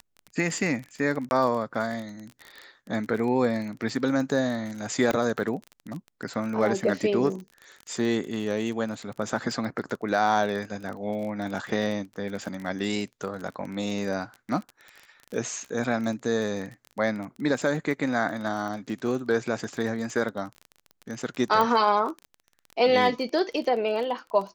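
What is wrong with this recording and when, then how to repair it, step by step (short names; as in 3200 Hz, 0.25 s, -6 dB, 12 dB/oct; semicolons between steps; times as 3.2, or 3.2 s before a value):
crackle 30/s -32 dBFS
1.29–1.31 gap 21 ms
5.11 pop -12 dBFS
21.61 pop -12 dBFS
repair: de-click; interpolate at 1.29, 21 ms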